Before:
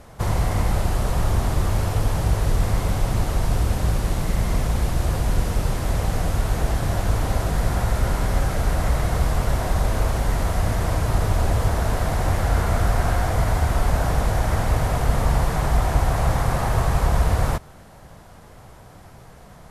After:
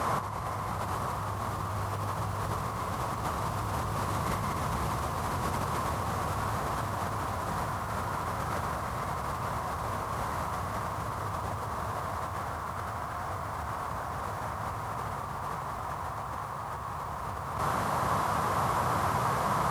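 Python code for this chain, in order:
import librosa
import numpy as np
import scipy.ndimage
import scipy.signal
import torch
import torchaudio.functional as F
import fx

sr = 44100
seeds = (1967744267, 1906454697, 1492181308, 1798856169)

y = scipy.signal.sosfilt(scipy.signal.butter(4, 78.0, 'highpass', fs=sr, output='sos'), x)
y = fx.peak_eq(y, sr, hz=1100.0, db=15.0, octaves=0.72)
y = fx.over_compress(y, sr, threshold_db=-34.0, ratio=-1.0)
y = fx.echo_crushed(y, sr, ms=454, feedback_pct=80, bits=9, wet_db=-9.5)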